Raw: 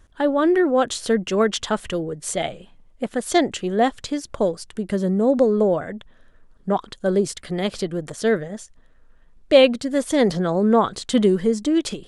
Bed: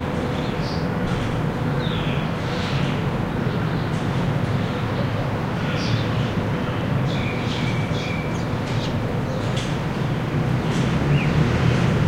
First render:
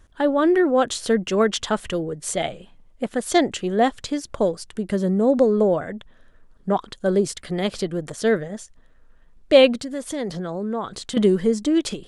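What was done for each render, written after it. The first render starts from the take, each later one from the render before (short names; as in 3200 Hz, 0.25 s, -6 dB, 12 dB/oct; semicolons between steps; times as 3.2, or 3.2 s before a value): 9.83–11.17 compressor 2:1, threshold -31 dBFS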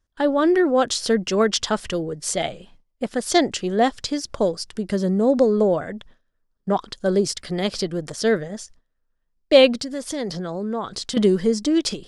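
gate with hold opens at -41 dBFS; bell 5100 Hz +9.5 dB 0.54 oct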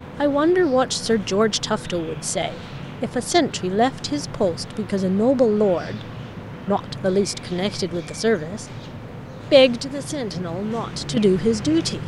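add bed -12 dB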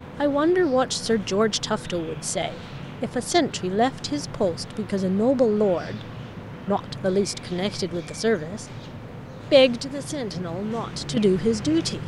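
gain -2.5 dB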